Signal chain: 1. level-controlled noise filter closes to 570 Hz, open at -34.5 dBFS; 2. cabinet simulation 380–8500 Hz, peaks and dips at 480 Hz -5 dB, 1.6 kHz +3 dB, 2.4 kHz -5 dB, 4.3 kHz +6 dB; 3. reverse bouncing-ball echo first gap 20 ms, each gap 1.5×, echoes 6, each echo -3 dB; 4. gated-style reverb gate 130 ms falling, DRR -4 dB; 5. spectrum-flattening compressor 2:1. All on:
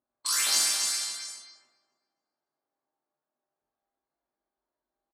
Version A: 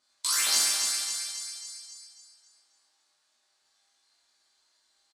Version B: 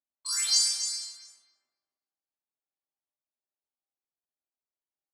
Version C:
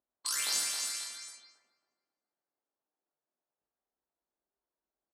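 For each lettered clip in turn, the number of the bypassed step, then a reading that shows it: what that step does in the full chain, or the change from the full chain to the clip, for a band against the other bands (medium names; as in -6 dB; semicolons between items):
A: 1, momentary loudness spread change +2 LU; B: 5, 1 kHz band -9.5 dB; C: 4, momentary loudness spread change -2 LU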